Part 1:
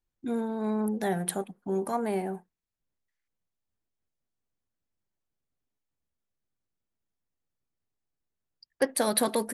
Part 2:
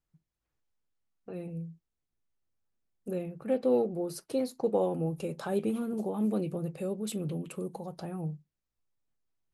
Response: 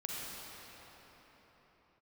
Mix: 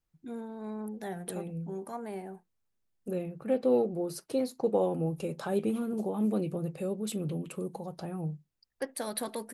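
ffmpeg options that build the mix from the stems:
-filter_complex "[0:a]volume=-9.5dB[a];[1:a]volume=0.5dB[b];[a][b]amix=inputs=2:normalize=0"

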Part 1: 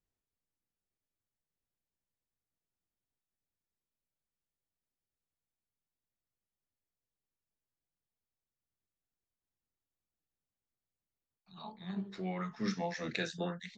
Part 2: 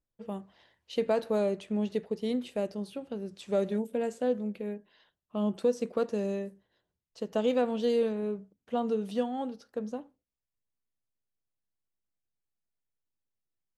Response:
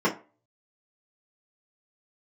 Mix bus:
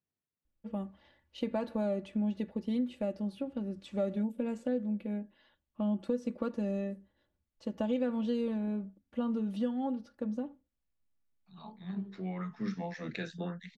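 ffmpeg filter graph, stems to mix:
-filter_complex "[0:a]highpass=150,volume=-3dB[a];[1:a]aecho=1:1:3.5:0.68,adelay=450,volume=-3dB[b];[a][b]amix=inputs=2:normalize=0,bass=f=250:g=9,treble=f=4k:g=-8,acompressor=threshold=-32dB:ratio=2"

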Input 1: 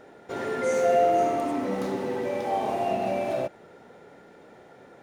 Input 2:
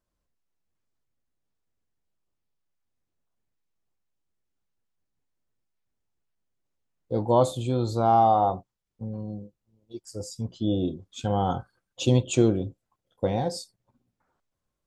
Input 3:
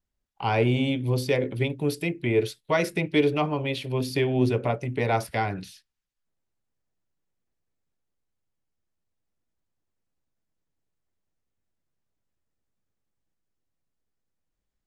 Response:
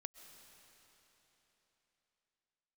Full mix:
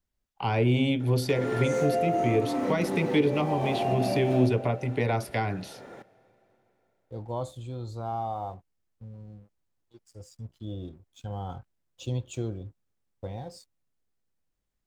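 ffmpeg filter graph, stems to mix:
-filter_complex "[0:a]adelay=1000,volume=2.5dB,asplit=2[a][b];[b]volume=-3.5dB[c];[1:a]asubboost=boost=3.5:cutoff=110,aeval=exprs='sgn(val(0))*max(abs(val(0))-0.00299,0)':c=same,volume=-12dB[d];[2:a]volume=0dB,asplit=3[e][f][g];[f]volume=-21dB[h];[g]apad=whole_len=265539[i];[a][i]sidechaincompress=threshold=-29dB:ratio=8:attack=16:release=666[j];[3:a]atrim=start_sample=2205[k];[c][h]amix=inputs=2:normalize=0[l];[l][k]afir=irnorm=-1:irlink=0[m];[j][d][e][m]amix=inputs=4:normalize=0,acrossover=split=360[n][o];[o]acompressor=threshold=-27dB:ratio=4[p];[n][p]amix=inputs=2:normalize=0"

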